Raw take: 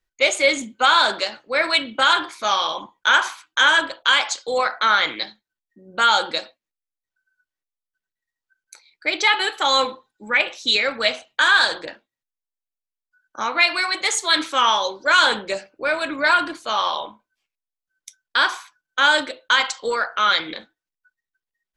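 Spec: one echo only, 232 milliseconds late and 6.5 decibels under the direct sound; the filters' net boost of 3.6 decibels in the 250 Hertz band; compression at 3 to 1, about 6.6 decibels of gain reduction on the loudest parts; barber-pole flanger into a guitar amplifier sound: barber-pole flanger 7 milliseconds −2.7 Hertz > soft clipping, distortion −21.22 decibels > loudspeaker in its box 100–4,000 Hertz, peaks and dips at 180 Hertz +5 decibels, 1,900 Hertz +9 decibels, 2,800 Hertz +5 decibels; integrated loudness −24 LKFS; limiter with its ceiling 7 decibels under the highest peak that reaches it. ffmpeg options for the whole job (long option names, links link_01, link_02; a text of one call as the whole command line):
ffmpeg -i in.wav -filter_complex "[0:a]equalizer=frequency=250:width_type=o:gain=4,acompressor=threshold=-20dB:ratio=3,alimiter=limit=-13.5dB:level=0:latency=1,aecho=1:1:232:0.473,asplit=2[link_01][link_02];[link_02]adelay=7,afreqshift=-2.7[link_03];[link_01][link_03]amix=inputs=2:normalize=1,asoftclip=threshold=-17.5dB,highpass=100,equalizer=frequency=180:width_type=q:width=4:gain=5,equalizer=frequency=1900:width_type=q:width=4:gain=9,equalizer=frequency=2800:width_type=q:width=4:gain=5,lowpass=frequency=4000:width=0.5412,lowpass=frequency=4000:width=1.3066,volume=2dB" out.wav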